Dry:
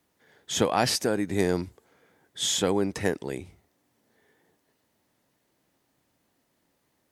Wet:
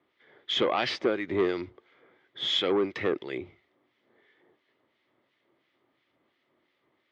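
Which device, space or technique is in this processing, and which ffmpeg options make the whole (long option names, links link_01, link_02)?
guitar amplifier with harmonic tremolo: -filter_complex "[0:a]acrossover=split=1500[link_01][link_02];[link_01]aeval=exprs='val(0)*(1-0.7/2+0.7/2*cos(2*PI*2.9*n/s))':channel_layout=same[link_03];[link_02]aeval=exprs='val(0)*(1-0.7/2-0.7/2*cos(2*PI*2.9*n/s))':channel_layout=same[link_04];[link_03][link_04]amix=inputs=2:normalize=0,asoftclip=type=tanh:threshold=-21.5dB,highpass=110,equalizer=frequency=180:width_type=q:width=4:gain=-6,equalizer=frequency=360:width_type=q:width=4:gain=9,equalizer=frequency=580:width_type=q:width=4:gain=4,equalizer=frequency=1200:width_type=q:width=4:gain=8,equalizer=frequency=2100:width_type=q:width=4:gain=10,equalizer=frequency=3300:width_type=q:width=4:gain=8,lowpass=frequency=4100:width=0.5412,lowpass=frequency=4100:width=1.3066"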